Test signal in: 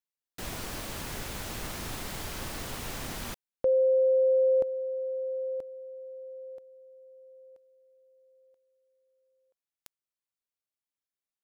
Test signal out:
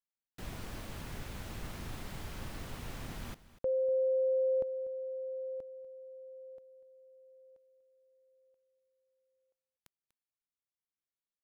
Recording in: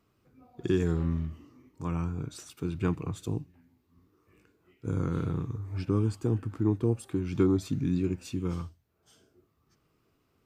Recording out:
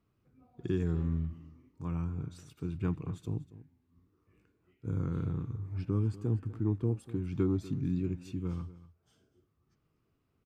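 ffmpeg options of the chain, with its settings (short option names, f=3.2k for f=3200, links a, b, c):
-af "bass=f=250:g=6,treble=f=4k:g=-5,aecho=1:1:243:0.141,volume=-8dB"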